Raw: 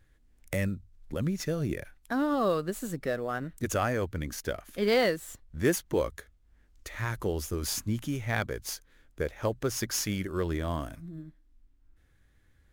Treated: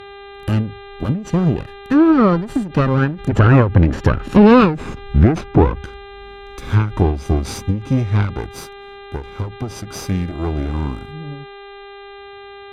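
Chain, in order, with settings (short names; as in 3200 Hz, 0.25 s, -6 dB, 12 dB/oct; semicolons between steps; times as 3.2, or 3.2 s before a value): minimum comb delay 0.75 ms; Doppler pass-by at 4.49, 33 m/s, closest 19 m; HPF 57 Hz 6 dB/oct; tilt shelf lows +7.5 dB, about 750 Hz; buzz 400 Hz, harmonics 10, -63 dBFS -5 dB/oct; treble ducked by the level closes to 2700 Hz, closed at -33 dBFS; maximiser +27 dB; ending taper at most 130 dB/s; gain -1 dB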